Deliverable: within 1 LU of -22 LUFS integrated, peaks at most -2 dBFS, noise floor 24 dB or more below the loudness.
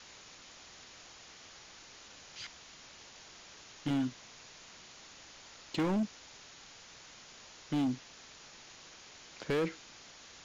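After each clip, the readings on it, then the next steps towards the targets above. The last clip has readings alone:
clipped 1.7%; flat tops at -27.5 dBFS; noise floor -55 dBFS; noise floor target -60 dBFS; loudness -36.0 LUFS; peak -27.5 dBFS; loudness target -22.0 LUFS
-> clip repair -27.5 dBFS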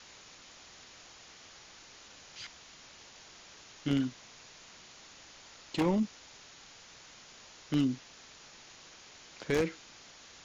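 clipped 0.0%; noise floor -55 dBFS; noise floor target -58 dBFS
-> noise print and reduce 6 dB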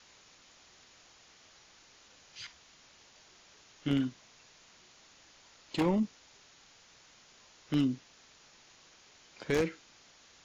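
noise floor -61 dBFS; loudness -33.5 LUFS; peak -18.5 dBFS; loudness target -22.0 LUFS
-> gain +11.5 dB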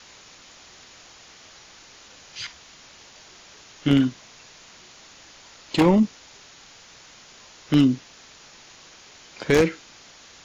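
loudness -22.0 LUFS; peak -7.0 dBFS; noise floor -49 dBFS

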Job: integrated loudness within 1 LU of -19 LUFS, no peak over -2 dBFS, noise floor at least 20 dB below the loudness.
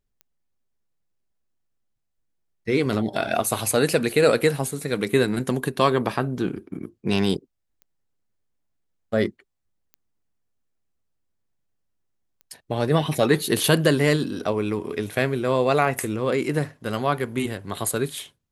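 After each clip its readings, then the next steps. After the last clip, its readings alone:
clicks 5; loudness -23.5 LUFS; peak -3.5 dBFS; loudness target -19.0 LUFS
-> de-click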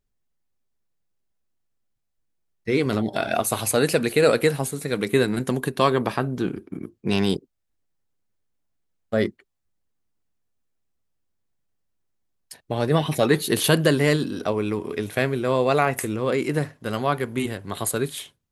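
clicks 0; loudness -23.5 LUFS; peak -3.5 dBFS; loudness target -19.0 LUFS
-> gain +4.5 dB; limiter -2 dBFS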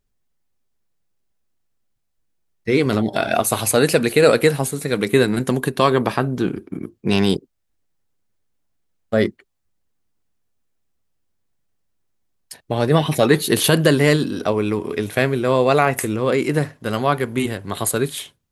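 loudness -19.0 LUFS; peak -2.0 dBFS; noise floor -71 dBFS

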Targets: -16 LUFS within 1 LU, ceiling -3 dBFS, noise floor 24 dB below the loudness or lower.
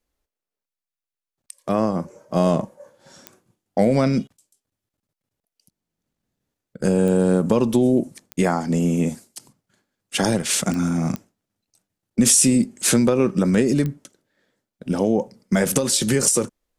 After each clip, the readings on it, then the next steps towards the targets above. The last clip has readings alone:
clicks 6; loudness -20.0 LUFS; peak -3.0 dBFS; loudness target -16.0 LUFS
-> de-click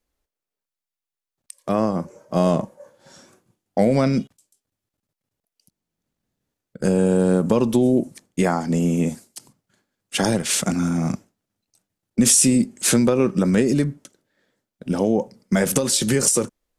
clicks 0; loudness -20.0 LUFS; peak -3.0 dBFS; loudness target -16.0 LUFS
-> gain +4 dB; limiter -3 dBFS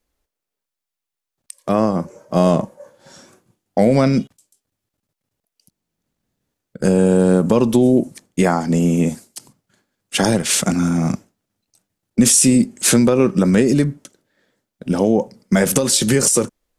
loudness -16.5 LUFS; peak -3.0 dBFS; noise floor -84 dBFS

